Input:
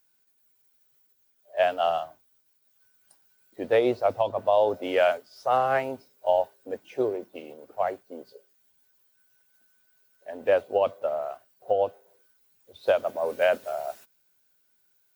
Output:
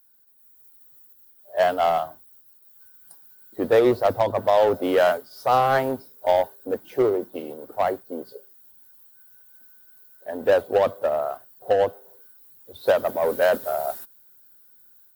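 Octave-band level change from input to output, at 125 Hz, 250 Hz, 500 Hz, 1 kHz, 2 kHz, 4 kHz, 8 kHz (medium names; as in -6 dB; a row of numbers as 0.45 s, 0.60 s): +8.5 dB, +7.0 dB, +4.0 dB, +4.5 dB, +3.0 dB, +3.5 dB, no reading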